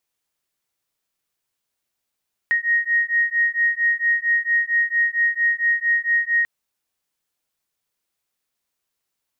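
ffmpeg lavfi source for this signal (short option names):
-f lavfi -i "aevalsrc='0.1*(sin(2*PI*1870*t)+sin(2*PI*1874.4*t))':d=3.94:s=44100"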